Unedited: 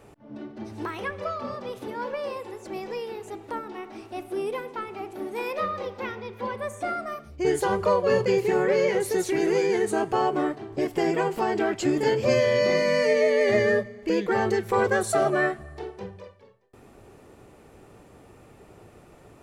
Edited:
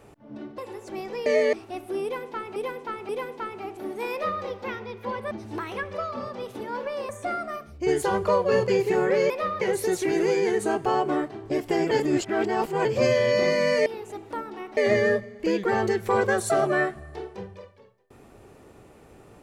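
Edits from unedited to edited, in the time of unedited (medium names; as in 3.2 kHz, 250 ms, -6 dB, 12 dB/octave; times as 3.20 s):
0.58–2.36 s: move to 6.67 s
3.04–3.95 s: swap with 13.13–13.40 s
4.45–4.98 s: loop, 3 plays
5.48–5.79 s: copy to 8.88 s
11.18–12.12 s: reverse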